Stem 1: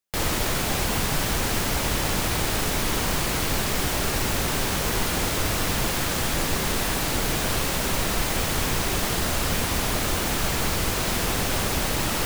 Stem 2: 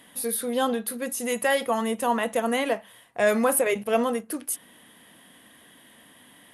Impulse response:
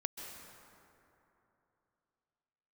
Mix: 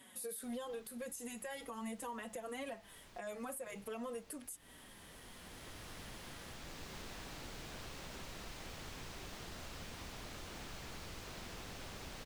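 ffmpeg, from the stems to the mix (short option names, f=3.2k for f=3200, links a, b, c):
-filter_complex "[0:a]acrossover=split=2400|7000[a][b][c];[a]acompressor=threshold=-31dB:ratio=4[d];[b]acompressor=threshold=-38dB:ratio=4[e];[c]acompressor=threshold=-49dB:ratio=4[f];[d][e][f]amix=inputs=3:normalize=0,adelay=300,volume=-16.5dB[g];[1:a]equalizer=f=7.6k:t=o:w=0.35:g=8.5,acompressor=threshold=-30dB:ratio=5,asplit=2[h][i];[i]adelay=4.8,afreqshift=-2.3[j];[h][j]amix=inputs=2:normalize=1,volume=-4dB,asplit=2[k][l];[l]apad=whole_len=553585[m];[g][m]sidechaincompress=threshold=-58dB:ratio=3:attack=46:release=1050[n];[n][k]amix=inputs=2:normalize=0,alimiter=level_in=11.5dB:limit=-24dB:level=0:latency=1:release=196,volume=-11.5dB"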